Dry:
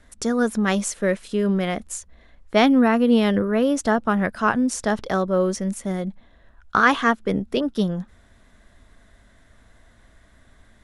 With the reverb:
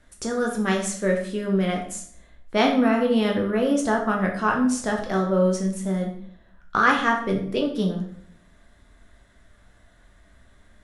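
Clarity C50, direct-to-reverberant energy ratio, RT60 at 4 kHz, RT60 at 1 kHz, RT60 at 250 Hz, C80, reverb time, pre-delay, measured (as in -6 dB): 7.0 dB, 0.0 dB, 0.50 s, 0.55 s, 0.75 s, 10.0 dB, 0.60 s, 8 ms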